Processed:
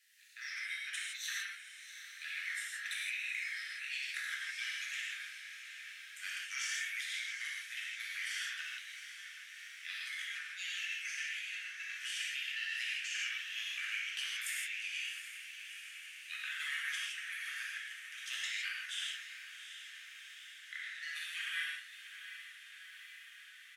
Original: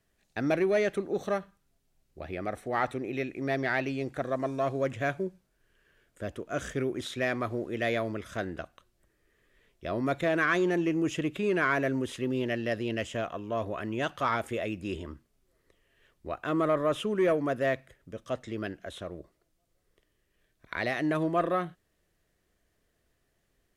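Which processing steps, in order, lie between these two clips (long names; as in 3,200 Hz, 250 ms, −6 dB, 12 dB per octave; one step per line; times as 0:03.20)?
pitch shifter gated in a rhythm −1.5 semitones, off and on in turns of 475 ms
Butterworth high-pass 1,700 Hz 72 dB per octave
high-shelf EQ 5,600 Hz −2 dB
compressor whose output falls as the input rises −50 dBFS, ratio −1
pitch-shifted copies added −4 semitones −17 dB
hard clipping −33 dBFS, distortion −32 dB
feedback delay with all-pass diffusion 728 ms, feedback 73%, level −11 dB
reverb whose tail is shaped and stops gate 190 ms flat, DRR −4.5 dB
level +2.5 dB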